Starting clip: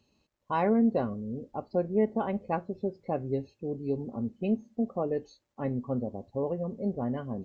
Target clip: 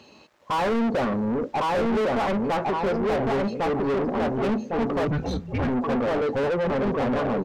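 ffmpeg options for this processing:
ffmpeg -i in.wav -filter_complex "[0:a]asplit=2[link_01][link_02];[link_02]adelay=1105,lowpass=frequency=1800:poles=1,volume=-3dB,asplit=2[link_03][link_04];[link_04]adelay=1105,lowpass=frequency=1800:poles=1,volume=0.25,asplit=2[link_05][link_06];[link_06]adelay=1105,lowpass=frequency=1800:poles=1,volume=0.25,asplit=2[link_07][link_08];[link_08]adelay=1105,lowpass=frequency=1800:poles=1,volume=0.25[link_09];[link_01][link_03][link_05][link_07][link_09]amix=inputs=5:normalize=0,asettb=1/sr,asplit=3[link_10][link_11][link_12];[link_10]atrim=end=5.074[link_13];[link_11]atrim=start=5.07:end=5.68,asetpts=PTS-STARTPTS,afade=type=in:duration=0.004:curve=qsin,afade=type=out:start_time=0.606:duration=0.004:curve=qsin,afreqshift=-300[link_14];[link_12]atrim=start=5.676[link_15];[link_13][link_14]acrossfade=duration=0.004:curve1=hsin:curve2=qsin[link_16];[link_16][link_15]acrossfade=duration=0.004:curve1=qsin:curve2=hsin,asplit=2[link_17][link_18];[link_18]highpass=frequency=720:poles=1,volume=38dB,asoftclip=type=tanh:threshold=-12dB[link_19];[link_17][link_19]amix=inputs=2:normalize=0,lowpass=frequency=1900:poles=1,volume=-6dB,volume=-4.5dB" out.wav

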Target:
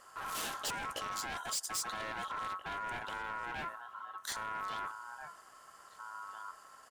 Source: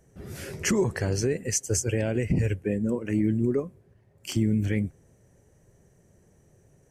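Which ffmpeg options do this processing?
ffmpeg -i in.wav -filter_complex "[0:a]areverse,acompressor=threshold=-32dB:ratio=12,areverse,asplit=2[link_01][link_02];[link_02]adelay=1633,volume=-14dB,highshelf=frequency=4000:gain=-36.7[link_03];[link_01][link_03]amix=inputs=2:normalize=0,acontrast=68,volume=34dB,asoftclip=hard,volume=-34dB,highpass=frequency=140:poles=1,equalizer=frequency=390:width=0.89:gain=-7.5,aeval=exprs='val(0)*sin(2*PI*1200*n/s)':channel_layout=same,volume=4dB" out.wav

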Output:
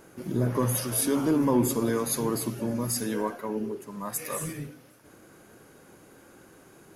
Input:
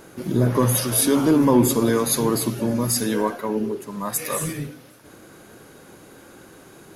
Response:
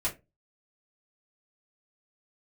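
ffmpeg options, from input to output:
-af "equalizer=frequency=3800:width_type=o:width=0.47:gain=-4.5,volume=-7dB"

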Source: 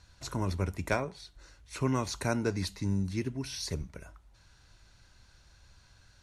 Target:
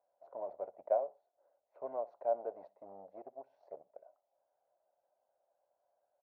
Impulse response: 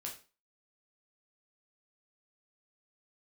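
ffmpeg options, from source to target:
-filter_complex "[0:a]asplit=2[link_01][link_02];[link_02]acrusher=bits=4:mix=0:aa=0.5,volume=-4dB[link_03];[link_01][link_03]amix=inputs=2:normalize=0,asuperpass=centerf=640:order=4:qfactor=3.2,aecho=1:1:61|122:0.0794|0.0199"

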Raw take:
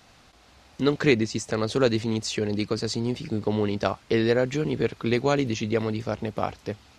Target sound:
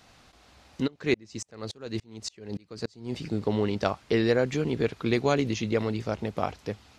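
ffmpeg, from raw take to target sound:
ffmpeg -i in.wav -filter_complex "[0:a]asplit=3[link_01][link_02][link_03];[link_01]afade=type=out:start_time=0.86:duration=0.02[link_04];[link_02]aeval=exprs='val(0)*pow(10,-33*if(lt(mod(-3.5*n/s,1),2*abs(-3.5)/1000),1-mod(-3.5*n/s,1)/(2*abs(-3.5)/1000),(mod(-3.5*n/s,1)-2*abs(-3.5)/1000)/(1-2*abs(-3.5)/1000))/20)':channel_layout=same,afade=type=in:start_time=0.86:duration=0.02,afade=type=out:start_time=3.12:duration=0.02[link_05];[link_03]afade=type=in:start_time=3.12:duration=0.02[link_06];[link_04][link_05][link_06]amix=inputs=3:normalize=0,volume=-1.5dB" out.wav

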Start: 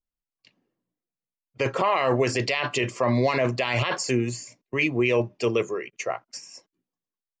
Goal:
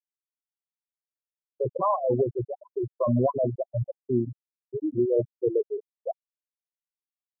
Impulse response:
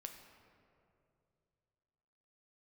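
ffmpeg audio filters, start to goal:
-af "afftfilt=real='re*gte(hypot(re,im),0.316)':imag='im*gte(hypot(re,im),0.316)':win_size=1024:overlap=0.75,afftfilt=real='re*lt(b*sr/1024,710*pow(1500/710,0.5+0.5*sin(2*PI*0.74*pts/sr)))':imag='im*lt(b*sr/1024,710*pow(1500/710,0.5+0.5*sin(2*PI*0.74*pts/sr)))':win_size=1024:overlap=0.75"

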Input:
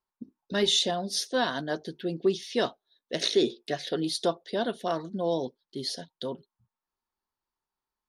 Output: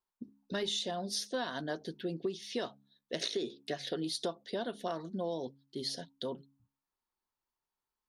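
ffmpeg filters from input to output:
ffmpeg -i in.wav -af "bandreject=frequency=68.89:width_type=h:width=4,bandreject=frequency=137.78:width_type=h:width=4,bandreject=frequency=206.67:width_type=h:width=4,bandreject=frequency=275.56:width_type=h:width=4,acompressor=threshold=-29dB:ratio=6,volume=-3dB" out.wav

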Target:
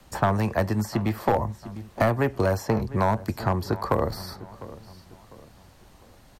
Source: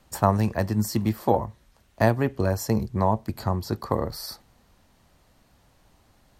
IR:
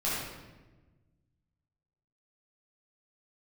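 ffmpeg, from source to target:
-filter_complex "[0:a]volume=14dB,asoftclip=hard,volume=-14dB,asplit=2[link_01][link_02];[link_02]adelay=701,lowpass=frequency=2700:poles=1,volume=-20.5dB,asplit=2[link_03][link_04];[link_04]adelay=701,lowpass=frequency=2700:poles=1,volume=0.39,asplit=2[link_05][link_06];[link_06]adelay=701,lowpass=frequency=2700:poles=1,volume=0.39[link_07];[link_01][link_03][link_05][link_07]amix=inputs=4:normalize=0,acrossover=split=120|430|2600|5300[link_08][link_09][link_10][link_11][link_12];[link_08]acompressor=threshold=-37dB:ratio=4[link_13];[link_09]acompressor=threshold=-35dB:ratio=4[link_14];[link_10]acompressor=threshold=-27dB:ratio=4[link_15];[link_11]acompressor=threshold=-55dB:ratio=4[link_16];[link_12]acompressor=threshold=-54dB:ratio=4[link_17];[link_13][link_14][link_15][link_16][link_17]amix=inputs=5:normalize=0,volume=6.5dB"

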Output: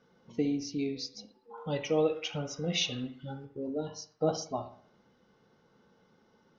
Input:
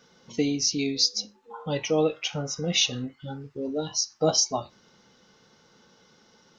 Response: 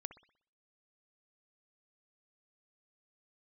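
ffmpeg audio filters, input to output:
-filter_complex "[0:a]asetnsamples=nb_out_samples=441:pad=0,asendcmd='1.58 lowpass f 3400;3.45 lowpass f 1100',lowpass=frequency=1100:poles=1[link_01];[1:a]atrim=start_sample=2205[link_02];[link_01][link_02]afir=irnorm=-1:irlink=0"

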